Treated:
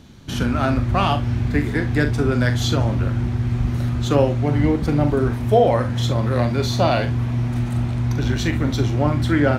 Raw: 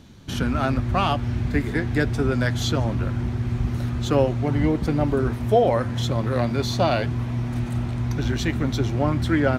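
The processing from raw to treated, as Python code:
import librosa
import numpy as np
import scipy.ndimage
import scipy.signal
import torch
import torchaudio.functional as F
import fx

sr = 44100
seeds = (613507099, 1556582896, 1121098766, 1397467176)

y = fx.room_early_taps(x, sr, ms=(41, 68), db=(-9.0, -16.0))
y = y * 10.0 ** (2.0 / 20.0)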